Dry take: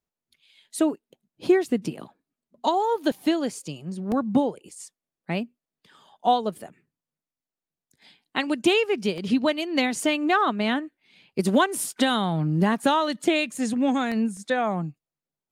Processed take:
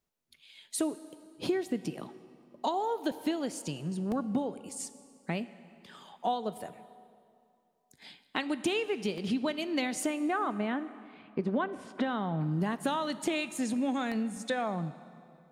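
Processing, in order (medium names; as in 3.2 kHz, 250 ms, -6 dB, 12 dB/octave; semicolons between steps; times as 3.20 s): 10.06–12.41 s: low-pass 1.9 kHz 12 dB/octave; compression 2.5:1, threshold -37 dBFS, peak gain reduction 15 dB; reverberation RT60 2.5 s, pre-delay 6 ms, DRR 13.5 dB; trim +3 dB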